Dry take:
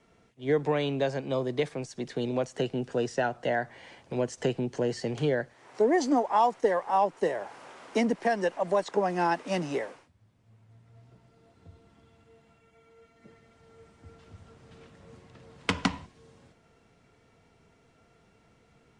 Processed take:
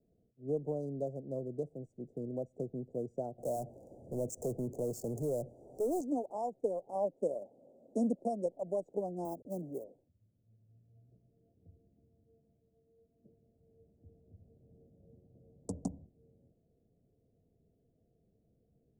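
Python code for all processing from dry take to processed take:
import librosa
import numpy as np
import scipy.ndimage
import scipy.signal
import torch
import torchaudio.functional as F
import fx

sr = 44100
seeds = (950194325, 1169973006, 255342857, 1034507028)

y = fx.chain(x, sr, fx.low_shelf(hz=420.0, db=-7.0),
    fx.power_curve(exponent=0.5), at=(3.38, 6.01))
y = fx.chain(y, sr, fx.low_shelf(hz=420.0, db=-5.5),
    fx.small_body(hz=(230.0, 550.0, 1100.0, 3200.0), ring_ms=25, db=9), at=(6.95, 8.46))
y = fx.chain(y, sr, fx.delta_hold(step_db=-39.5),
    fx.highpass(hz=120.0, slope=12), at=(9.25, 9.85))
y = fx.wiener(y, sr, points=41)
y = scipy.signal.sosfilt(scipy.signal.ellip(3, 1.0, 80, [650.0, 7300.0], 'bandstop', fs=sr, output='sos'), y)
y = fx.high_shelf(y, sr, hz=5700.0, db=7.0)
y = y * librosa.db_to_amplitude(-7.5)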